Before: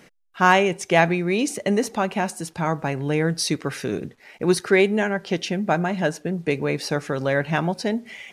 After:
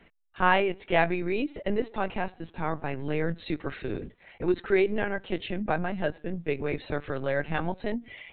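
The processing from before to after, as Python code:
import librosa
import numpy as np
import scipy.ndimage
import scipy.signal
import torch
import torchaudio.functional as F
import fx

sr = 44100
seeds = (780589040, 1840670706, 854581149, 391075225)

y = fx.lpc_vocoder(x, sr, seeds[0], excitation='pitch_kept', order=16)
y = F.gain(torch.from_numpy(y), -6.0).numpy()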